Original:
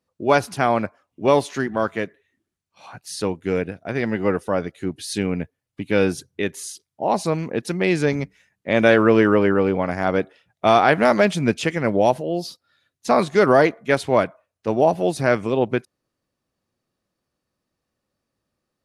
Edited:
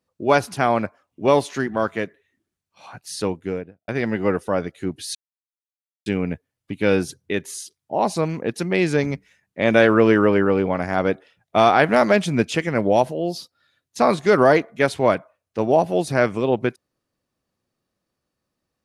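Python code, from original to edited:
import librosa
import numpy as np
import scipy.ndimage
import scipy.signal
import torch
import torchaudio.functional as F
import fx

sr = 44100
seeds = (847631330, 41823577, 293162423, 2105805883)

y = fx.studio_fade_out(x, sr, start_s=3.27, length_s=0.61)
y = fx.edit(y, sr, fx.insert_silence(at_s=5.15, length_s=0.91), tone=tone)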